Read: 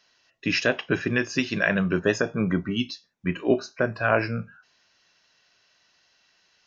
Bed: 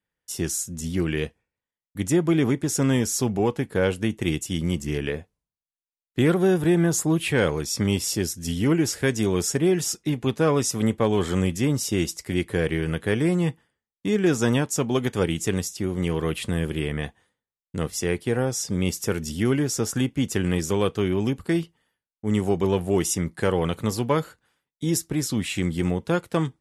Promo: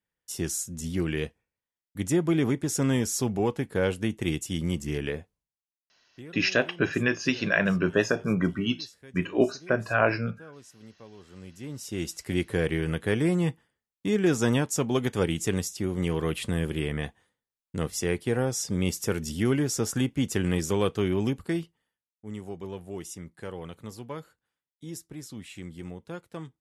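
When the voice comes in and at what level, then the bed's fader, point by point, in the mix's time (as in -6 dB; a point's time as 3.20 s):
5.90 s, -1.0 dB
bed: 5.37 s -3.5 dB
6.36 s -27 dB
11.24 s -27 dB
12.22 s -2.5 dB
21.27 s -2.5 dB
22.37 s -15.5 dB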